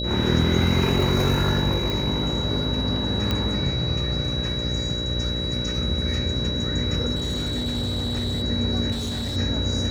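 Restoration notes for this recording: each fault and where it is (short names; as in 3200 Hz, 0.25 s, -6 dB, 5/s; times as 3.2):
buzz 60 Hz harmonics 10 -29 dBFS
tone 3900 Hz -28 dBFS
1.9 pop
3.31 pop -10 dBFS
7.15–8.43 clipped -22 dBFS
8.91–9.37 clipped -25 dBFS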